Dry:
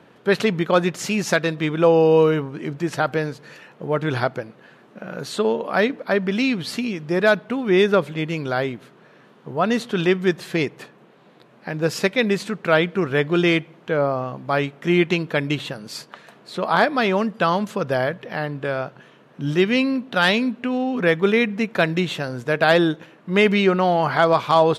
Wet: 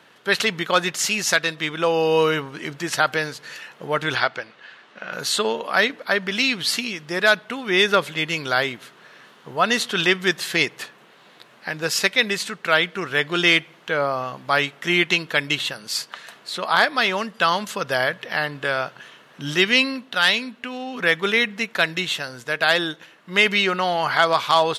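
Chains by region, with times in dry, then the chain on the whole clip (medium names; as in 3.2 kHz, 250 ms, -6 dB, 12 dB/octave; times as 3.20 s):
4.15–5.13 s: low-pass 3.8 kHz + tilt EQ +2 dB/octave
whole clip: tilt shelf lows -9 dB, about 930 Hz; band-stop 2.4 kHz, Q 19; level rider gain up to 4 dB; trim -1 dB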